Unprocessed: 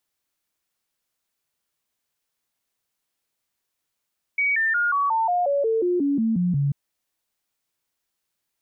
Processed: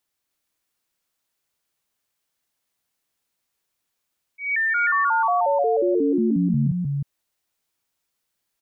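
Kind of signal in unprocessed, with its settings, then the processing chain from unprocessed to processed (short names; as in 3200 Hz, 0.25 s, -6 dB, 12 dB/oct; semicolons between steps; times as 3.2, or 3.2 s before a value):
stepped sine 2260 Hz down, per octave 3, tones 13, 0.18 s, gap 0.00 s -18.5 dBFS
auto swell 0.176 s; echo 0.308 s -3 dB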